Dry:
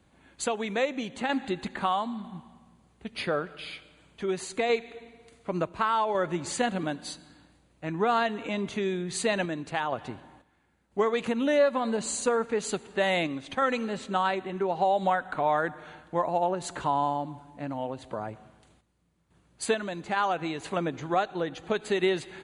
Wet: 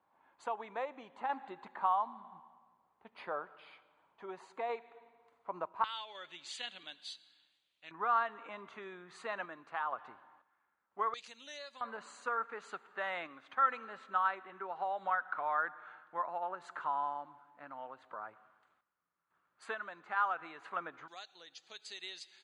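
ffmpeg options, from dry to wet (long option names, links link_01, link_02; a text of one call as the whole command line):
ffmpeg -i in.wav -af "asetnsamples=nb_out_samples=441:pad=0,asendcmd='5.84 bandpass f 3400;7.91 bandpass f 1200;11.14 bandpass f 5100;11.81 bandpass f 1300;21.08 bandpass f 5000',bandpass=frequency=960:width_type=q:width=3.3:csg=0" out.wav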